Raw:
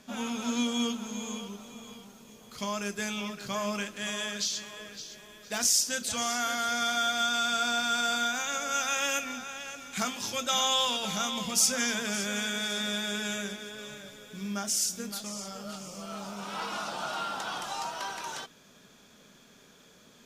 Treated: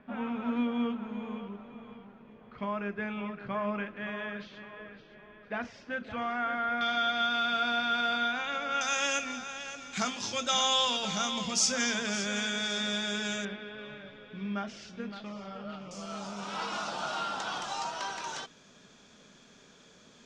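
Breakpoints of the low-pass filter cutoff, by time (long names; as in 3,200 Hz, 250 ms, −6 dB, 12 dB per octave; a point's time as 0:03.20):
low-pass filter 24 dB per octave
2,200 Hz
from 0:06.81 3,600 Hz
from 0:08.81 6,800 Hz
from 0:13.45 3,100 Hz
from 0:15.91 7,500 Hz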